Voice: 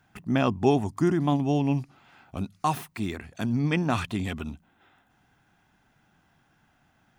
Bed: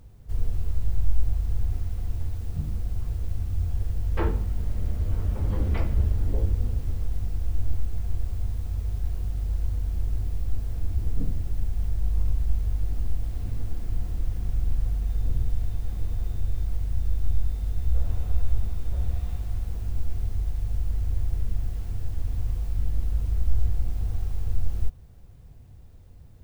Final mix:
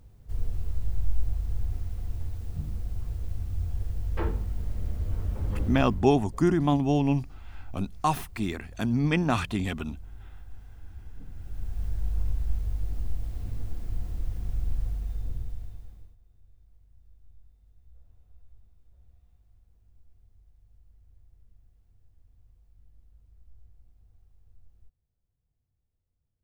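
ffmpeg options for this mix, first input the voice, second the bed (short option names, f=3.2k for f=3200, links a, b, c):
-filter_complex "[0:a]adelay=5400,volume=0.5dB[a];[1:a]volume=9.5dB,afade=t=out:st=5.66:d=0.42:silence=0.211349,afade=t=in:st=11.27:d=0.6:silence=0.211349,afade=t=out:st=14.79:d=1.37:silence=0.0421697[b];[a][b]amix=inputs=2:normalize=0"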